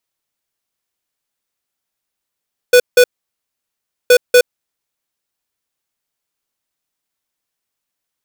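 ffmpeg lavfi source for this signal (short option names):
-f lavfi -i "aevalsrc='0.473*(2*lt(mod(494*t,1),0.5)-1)*clip(min(mod(mod(t,1.37),0.24),0.07-mod(mod(t,1.37),0.24))/0.005,0,1)*lt(mod(t,1.37),0.48)':d=2.74:s=44100"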